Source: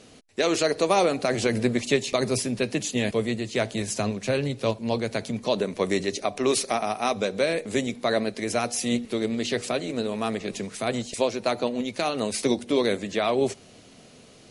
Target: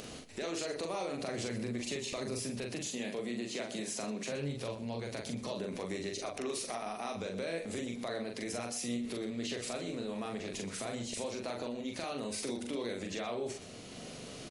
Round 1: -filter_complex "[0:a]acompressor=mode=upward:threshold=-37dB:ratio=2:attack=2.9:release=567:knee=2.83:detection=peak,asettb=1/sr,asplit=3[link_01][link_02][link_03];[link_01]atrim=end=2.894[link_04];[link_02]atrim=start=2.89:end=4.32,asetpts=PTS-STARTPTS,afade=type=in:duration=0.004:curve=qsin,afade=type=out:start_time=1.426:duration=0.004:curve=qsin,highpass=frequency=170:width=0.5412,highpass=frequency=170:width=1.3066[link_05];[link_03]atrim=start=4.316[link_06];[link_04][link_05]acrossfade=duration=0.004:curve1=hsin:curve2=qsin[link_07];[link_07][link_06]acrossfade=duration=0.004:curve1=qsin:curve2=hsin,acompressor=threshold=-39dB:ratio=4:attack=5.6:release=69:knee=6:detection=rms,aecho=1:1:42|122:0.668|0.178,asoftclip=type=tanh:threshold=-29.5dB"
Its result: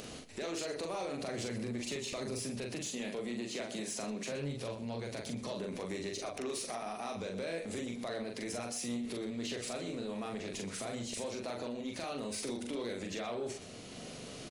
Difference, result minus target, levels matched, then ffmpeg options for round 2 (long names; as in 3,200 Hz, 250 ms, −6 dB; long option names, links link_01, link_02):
soft clipping: distortion +14 dB
-filter_complex "[0:a]acompressor=mode=upward:threshold=-37dB:ratio=2:attack=2.9:release=567:knee=2.83:detection=peak,asettb=1/sr,asplit=3[link_01][link_02][link_03];[link_01]atrim=end=2.894[link_04];[link_02]atrim=start=2.89:end=4.32,asetpts=PTS-STARTPTS,afade=type=in:duration=0.004:curve=qsin,afade=type=out:start_time=1.426:duration=0.004:curve=qsin,highpass=frequency=170:width=0.5412,highpass=frequency=170:width=1.3066[link_05];[link_03]atrim=start=4.316[link_06];[link_04][link_05]acrossfade=duration=0.004:curve1=hsin:curve2=qsin[link_07];[link_07][link_06]acrossfade=duration=0.004:curve1=qsin:curve2=hsin,acompressor=threshold=-39dB:ratio=4:attack=5.6:release=69:knee=6:detection=rms,aecho=1:1:42|122:0.668|0.178,asoftclip=type=tanh:threshold=-21dB"